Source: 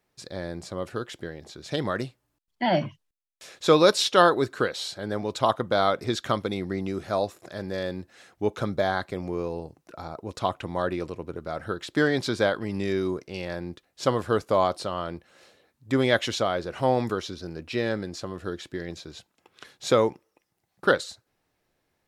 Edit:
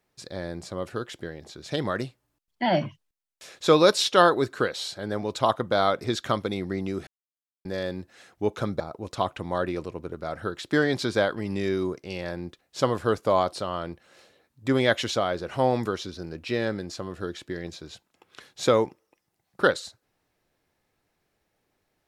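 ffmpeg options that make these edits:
-filter_complex "[0:a]asplit=4[a][b][c][d];[a]atrim=end=7.07,asetpts=PTS-STARTPTS,afade=t=out:st=7.066:d=0.004:c=hsin[e];[b]atrim=start=7.07:end=7.65,asetpts=PTS-STARTPTS,volume=0[f];[c]atrim=start=7.65:end=8.802,asetpts=PTS-STARTPTS,afade=t=in:d=0.004:c=hsin[g];[d]atrim=start=10.038[h];[e][f][g]concat=n=3:v=0:a=1[i];[i][h]acrossfade=d=0.004:c1=hsin:c2=hsin"

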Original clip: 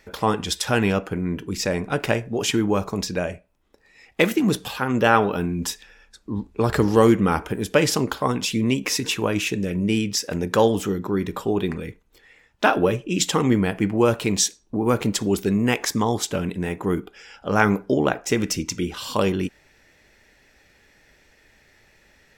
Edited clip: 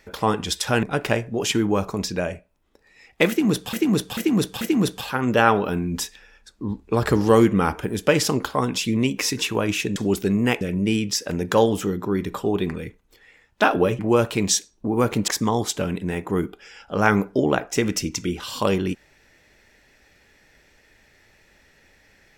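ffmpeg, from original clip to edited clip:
-filter_complex "[0:a]asplit=9[a][b][c][d][e][f][g][h][i];[a]atrim=end=0.832[j];[b]atrim=start=1.818:end=4.722[k];[c]atrim=start=4.278:end=4.722[l];[d]atrim=start=4.278:end=4.722[m];[e]atrim=start=4.278:end=9.632[n];[f]atrim=start=15.168:end=15.822[o];[g]atrim=start=9.628:end=13.012[p];[h]atrim=start=13.878:end=15.172[q];[i]atrim=start=15.818[r];[j][k]acrossfade=d=0.004:c1=hsin:c2=hsin[s];[s][l]acrossfade=d=0.004:c1=hsin:c2=hsin[t];[t][m]acrossfade=d=0.004:c1=hsin:c2=hsin[u];[u][n]acrossfade=d=0.004:c1=hsin:c2=hsin[v];[v][o]acrossfade=d=0.004:c1=hsin:c2=hsin[w];[w][p]acrossfade=d=0.004:c1=hsin:c2=hsin[x];[x][q]acrossfade=d=0.004:c1=hsin:c2=hsin[y];[y][r]acrossfade=d=0.004:c1=hsin:c2=hsin"

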